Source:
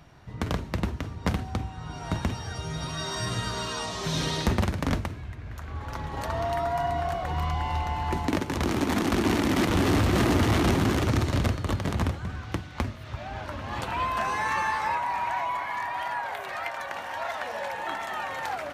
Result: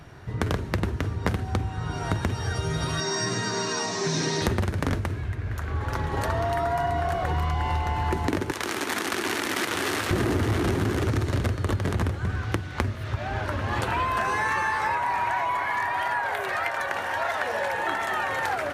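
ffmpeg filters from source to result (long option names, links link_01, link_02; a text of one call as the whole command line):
ffmpeg -i in.wav -filter_complex "[0:a]asettb=1/sr,asplit=3[link_01][link_02][link_03];[link_01]atrim=end=3.004[link_04];[link_02]atrim=start=3:end=4.42,asetpts=PTS-STARTPTS,afade=type=in:duration=0.004:curve=qsin,afade=type=out:start_time=1.416:duration=0.004:curve=qsin,highpass=frequency=150:width=0.5412,highpass=frequency=150:width=1.3066,equalizer=frequency=540:width_type=q:width=4:gain=-7,equalizer=frequency=1300:width_type=q:width=4:gain=-7,equalizer=frequency=3200:width_type=q:width=4:gain=-10,equalizer=frequency=5700:width_type=q:width=4:gain=5,lowpass=frequency=7800:width=0.5412,lowpass=frequency=7800:width=1.3066[link_05];[link_03]atrim=start=4.416[link_06];[link_04][link_05]acrossfade=duration=0.004:curve1=hsin:curve2=qsin[link_07];[link_07][link_06]acrossfade=duration=0.004:curve1=qsin:curve2=hsin,asettb=1/sr,asplit=3[link_08][link_09][link_10];[link_08]atrim=end=8.514[link_11];[link_09]atrim=start=8.51:end=10.11,asetpts=PTS-STARTPTS,afade=type=in:duration=0.004:curve=qsin,afade=type=out:start_time=1.596:duration=0.004:curve=qsin,highpass=frequency=1500:poles=1[link_12];[link_10]atrim=start=10.106[link_13];[link_11][link_12]acrossfade=duration=0.004:curve1=hsin:curve2=qsin[link_14];[link_14][link_13]acrossfade=duration=0.004:curve1=qsin:curve2=hsin,equalizer=frequency=100:width_type=o:width=0.67:gain=7,equalizer=frequency=400:width_type=o:width=0.67:gain=7,equalizer=frequency=1600:width_type=o:width=0.67:gain=5,equalizer=frequency=10000:width_type=o:width=0.67:gain=4,acompressor=threshold=-26dB:ratio=6,volume=4dB" out.wav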